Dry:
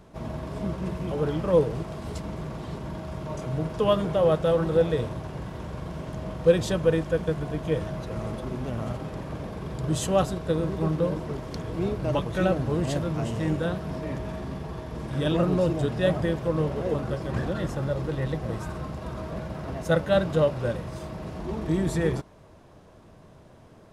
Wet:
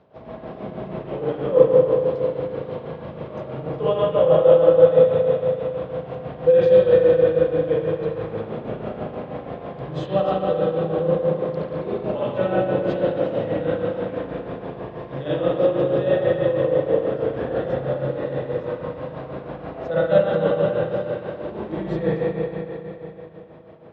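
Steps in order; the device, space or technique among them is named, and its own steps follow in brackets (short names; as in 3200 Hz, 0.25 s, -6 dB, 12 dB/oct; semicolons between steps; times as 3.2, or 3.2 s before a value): combo amplifier with spring reverb and tremolo (spring tank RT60 3.4 s, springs 37/57 ms, chirp 35 ms, DRR -7.5 dB; tremolo 6.2 Hz, depth 59%; speaker cabinet 110–4100 Hz, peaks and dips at 170 Hz -4 dB, 510 Hz +10 dB, 740 Hz +4 dB); gain -4.5 dB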